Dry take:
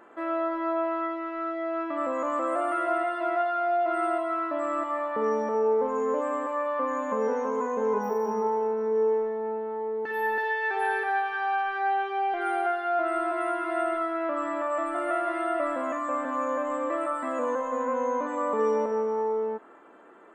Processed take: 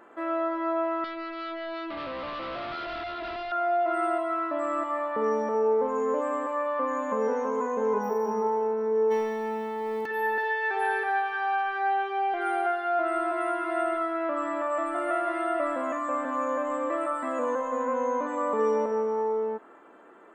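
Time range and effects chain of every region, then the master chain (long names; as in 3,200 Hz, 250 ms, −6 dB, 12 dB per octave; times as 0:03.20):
0:01.04–0:03.52: high-shelf EQ 3,300 Hz +8.5 dB + gain into a clipping stage and back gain 33.5 dB + Butterworth low-pass 4,600 Hz 48 dB per octave
0:09.10–0:10.05: spectral envelope flattened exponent 0.6 + notch filter 1,500 Hz, Q 5.6
whole clip: no processing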